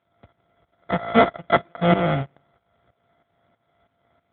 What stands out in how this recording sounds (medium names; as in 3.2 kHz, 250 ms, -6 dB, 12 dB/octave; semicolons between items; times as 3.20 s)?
a buzz of ramps at a fixed pitch in blocks of 64 samples; tremolo saw up 3.1 Hz, depth 80%; aliases and images of a low sample rate 2.7 kHz, jitter 0%; AMR-NB